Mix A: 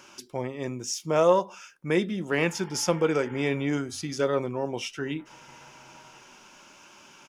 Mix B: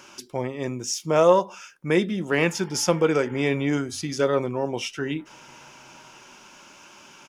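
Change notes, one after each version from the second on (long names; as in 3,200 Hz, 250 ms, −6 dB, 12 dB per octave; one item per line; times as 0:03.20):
speech +3.5 dB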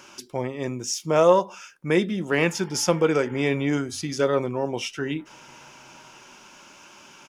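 nothing changed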